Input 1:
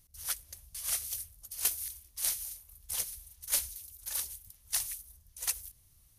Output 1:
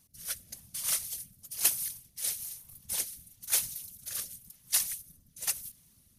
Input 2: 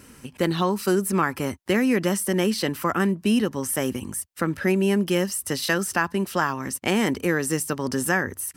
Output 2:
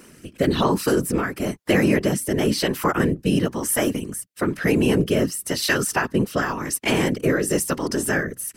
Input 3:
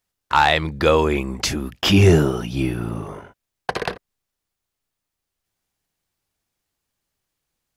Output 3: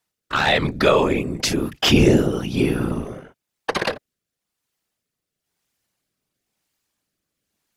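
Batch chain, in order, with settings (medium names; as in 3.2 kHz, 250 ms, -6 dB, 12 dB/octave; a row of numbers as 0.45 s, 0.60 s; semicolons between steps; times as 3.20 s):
rotary cabinet horn 1 Hz; high-pass 47 Hz; whisper effect; bass shelf 82 Hz -7 dB; in parallel at 0 dB: peak limiter -15 dBFS; on the sum: trim -1 dB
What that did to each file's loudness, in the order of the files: +2.5 LU, +2.0 LU, -0.5 LU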